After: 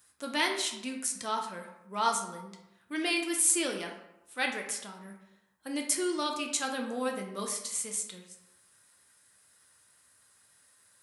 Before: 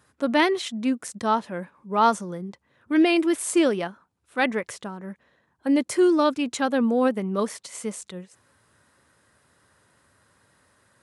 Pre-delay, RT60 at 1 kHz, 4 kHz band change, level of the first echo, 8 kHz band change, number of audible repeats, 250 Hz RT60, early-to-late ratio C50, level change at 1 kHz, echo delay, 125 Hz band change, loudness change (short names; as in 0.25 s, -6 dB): 6 ms, 0.95 s, -1.0 dB, none, +5.5 dB, none, 0.85 s, 6.5 dB, -8.5 dB, none, -13.5 dB, -7.5 dB